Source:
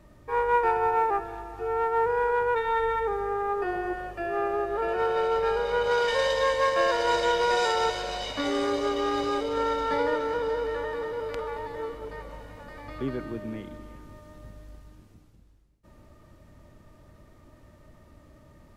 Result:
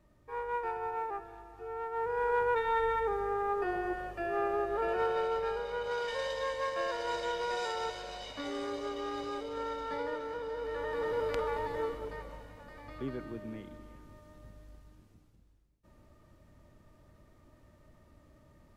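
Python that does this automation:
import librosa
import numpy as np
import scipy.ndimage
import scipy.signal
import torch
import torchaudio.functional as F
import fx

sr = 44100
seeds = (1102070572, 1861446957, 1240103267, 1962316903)

y = fx.gain(x, sr, db=fx.line((1.89, -12.0), (2.34, -4.0), (4.95, -4.0), (5.74, -10.5), (10.51, -10.5), (11.12, 0.0), (11.8, 0.0), (12.56, -7.0)))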